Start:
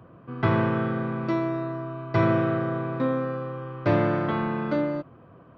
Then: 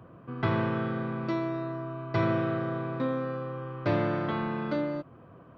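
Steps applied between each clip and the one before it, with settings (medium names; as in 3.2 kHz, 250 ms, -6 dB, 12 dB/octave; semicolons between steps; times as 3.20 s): dynamic bell 4.1 kHz, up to +5 dB, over -50 dBFS, Q 1.3; in parallel at -1 dB: compression, threshold -34 dBFS, peak gain reduction 16 dB; on the sum: trim -6.5 dB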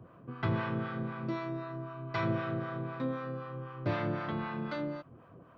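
dynamic bell 420 Hz, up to -4 dB, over -42 dBFS, Q 0.86; harmonic tremolo 3.9 Hz, depth 70%, crossover 630 Hz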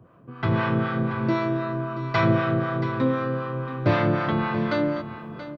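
level rider gain up to 11.5 dB; delay 679 ms -12.5 dB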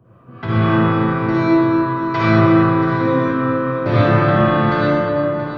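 reverberation RT60 2.9 s, pre-delay 43 ms, DRR -9 dB; trim -1.5 dB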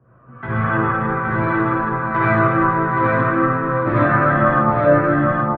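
chorus voices 6, 0.65 Hz, delay 15 ms, depth 2.1 ms; low-pass sweep 1.6 kHz -> 130 Hz, 4.54–5.47 s; delay 821 ms -3.5 dB; trim -1 dB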